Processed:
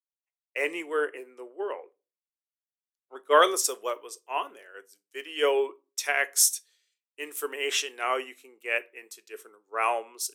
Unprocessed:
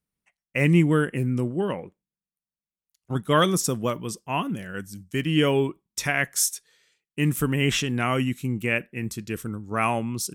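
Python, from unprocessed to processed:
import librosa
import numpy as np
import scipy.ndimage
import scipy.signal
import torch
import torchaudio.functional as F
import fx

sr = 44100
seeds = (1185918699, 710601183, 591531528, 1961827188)

y = scipy.signal.sosfilt(scipy.signal.ellip(4, 1.0, 70, 400.0, 'highpass', fs=sr, output='sos'), x)
y = fx.room_shoebox(y, sr, seeds[0], volume_m3=210.0, walls='furnished', distance_m=0.33)
y = fx.band_widen(y, sr, depth_pct=70)
y = y * librosa.db_to_amplitude(-3.0)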